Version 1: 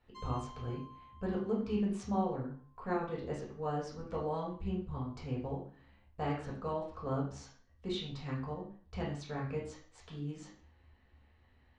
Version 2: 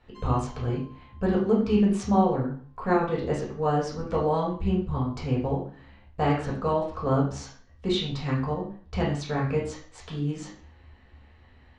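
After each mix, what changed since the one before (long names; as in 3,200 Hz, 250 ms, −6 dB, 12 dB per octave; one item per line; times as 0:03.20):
speech +11.5 dB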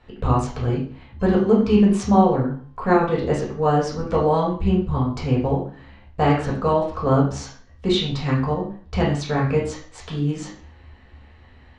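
speech +6.0 dB
background: entry +1.05 s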